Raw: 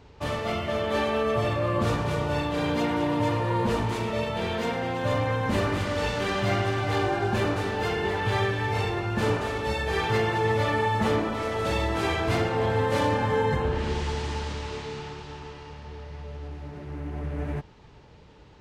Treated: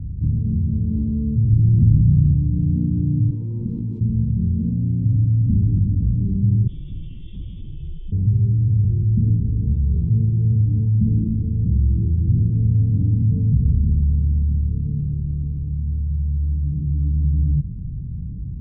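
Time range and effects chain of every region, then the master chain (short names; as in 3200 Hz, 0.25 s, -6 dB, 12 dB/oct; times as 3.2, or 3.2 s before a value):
1.5–2.33 half-waves squared off + bell 4700 Hz +10 dB 0.29 oct
3.3–4.01 weighting filter A + Doppler distortion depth 0.44 ms
6.67–8.12 air absorption 260 m + inverted band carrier 3500 Hz
whole clip: inverse Chebyshev low-pass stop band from 620 Hz, stop band 60 dB; fast leveller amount 50%; gain +8.5 dB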